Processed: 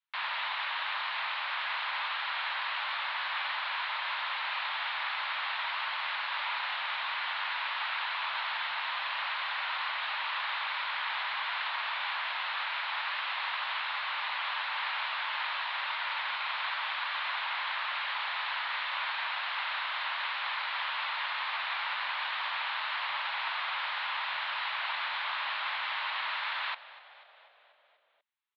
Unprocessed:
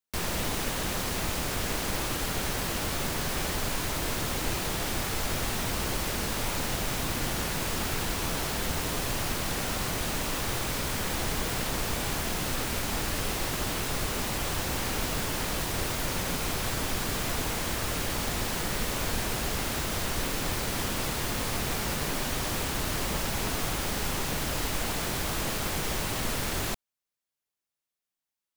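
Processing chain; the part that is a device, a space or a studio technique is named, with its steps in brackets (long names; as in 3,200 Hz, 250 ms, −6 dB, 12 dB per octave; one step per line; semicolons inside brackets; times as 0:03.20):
elliptic band-pass filter 930–4,100 Hz, stop band 40 dB
frequency-shifting delay pedal into a guitar cabinet (echo with shifted repeats 244 ms, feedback 62%, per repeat −56 Hz, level −18 dB; loudspeaker in its box 77–3,700 Hz, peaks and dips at 220 Hz −5 dB, 350 Hz −5 dB, 580 Hz +7 dB)
level +3.5 dB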